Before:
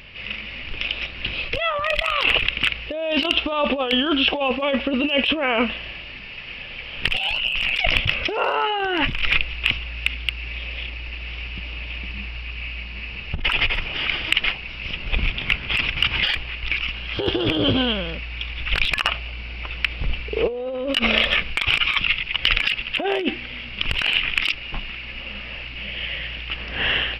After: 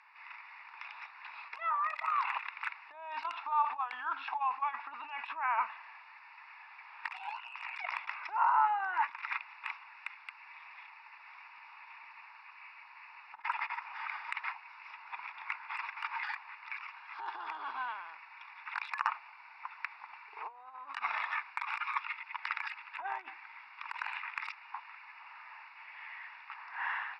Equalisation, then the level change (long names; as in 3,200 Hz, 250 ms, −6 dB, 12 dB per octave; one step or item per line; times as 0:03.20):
four-pole ladder high-pass 860 Hz, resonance 75%
low-pass filter 4,500 Hz 12 dB per octave
phaser with its sweep stopped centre 1,300 Hz, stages 4
0.0 dB